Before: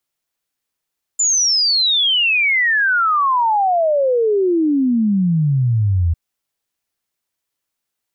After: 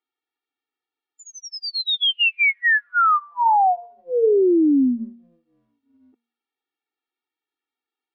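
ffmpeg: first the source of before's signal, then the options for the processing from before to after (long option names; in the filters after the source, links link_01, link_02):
-f lavfi -i "aevalsrc='0.237*clip(min(t,4.95-t)/0.01,0,1)*sin(2*PI*7200*4.95/log(80/7200)*(exp(log(80/7200)*t/4.95)-1))':duration=4.95:sample_rate=44100"
-af "lowpass=frequency=3500:width=0.5412,lowpass=frequency=3500:width=1.3066,bandreject=frequency=234.8:width_type=h:width=4,bandreject=frequency=469.6:width_type=h:width=4,bandreject=frequency=704.4:width_type=h:width=4,bandreject=frequency=939.2:width_type=h:width=4,bandreject=frequency=1174:width_type=h:width=4,afftfilt=real='re*eq(mod(floor(b*sr/1024/240),2),1)':imag='im*eq(mod(floor(b*sr/1024/240),2),1)':win_size=1024:overlap=0.75"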